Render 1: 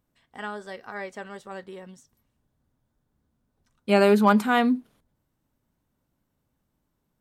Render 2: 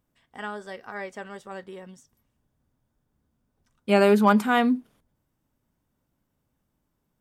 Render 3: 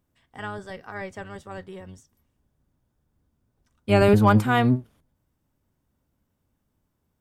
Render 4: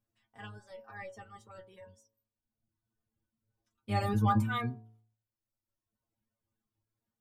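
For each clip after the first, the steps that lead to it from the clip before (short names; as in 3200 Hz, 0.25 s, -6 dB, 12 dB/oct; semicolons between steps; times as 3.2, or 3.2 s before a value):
notch 4100 Hz, Q 13
octaver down 1 oct, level 0 dB
metallic resonator 110 Hz, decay 0.31 s, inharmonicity 0.002; reverb removal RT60 1.2 s; de-hum 55.44 Hz, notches 21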